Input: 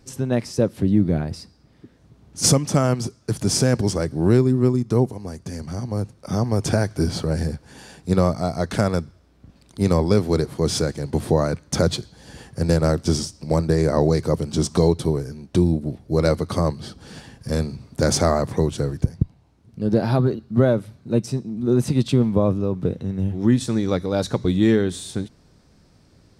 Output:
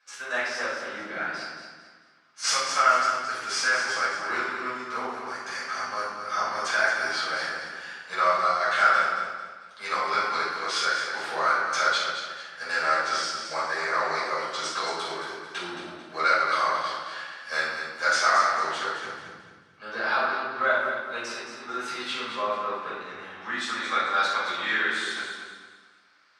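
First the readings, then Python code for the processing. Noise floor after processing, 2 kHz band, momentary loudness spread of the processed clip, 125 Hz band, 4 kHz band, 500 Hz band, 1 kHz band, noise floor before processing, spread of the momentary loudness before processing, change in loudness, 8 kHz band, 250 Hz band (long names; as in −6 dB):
−54 dBFS, +12.0 dB, 14 LU, −34.0 dB, +1.0 dB, −11.0 dB, +7.0 dB, −55 dBFS, 10 LU, −4.5 dB, −6.5 dB, −23.0 dB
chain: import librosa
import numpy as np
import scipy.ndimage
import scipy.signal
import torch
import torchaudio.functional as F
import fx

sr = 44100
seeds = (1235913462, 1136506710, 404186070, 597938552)

p1 = fx.high_shelf(x, sr, hz=2500.0, db=10.0)
p2 = fx.leveller(p1, sr, passes=1)
p3 = fx.rider(p2, sr, range_db=10, speed_s=0.5)
p4 = p2 + F.gain(torch.from_numpy(p3), 1.0).numpy()
p5 = fx.ladder_bandpass(p4, sr, hz=1600.0, resonance_pct=55)
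p6 = p5 + fx.echo_feedback(p5, sr, ms=221, feedback_pct=35, wet_db=-8, dry=0)
p7 = fx.room_shoebox(p6, sr, seeds[0], volume_m3=410.0, walls='mixed', distance_m=5.5)
y = F.gain(torch.from_numpy(p7), -8.0).numpy()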